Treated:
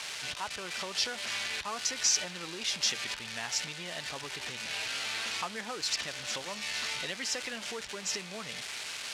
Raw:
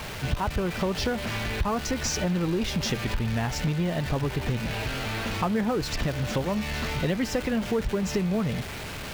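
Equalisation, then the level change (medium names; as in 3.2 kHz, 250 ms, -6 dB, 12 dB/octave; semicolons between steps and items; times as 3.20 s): frequency weighting ITU-R 468; -8.0 dB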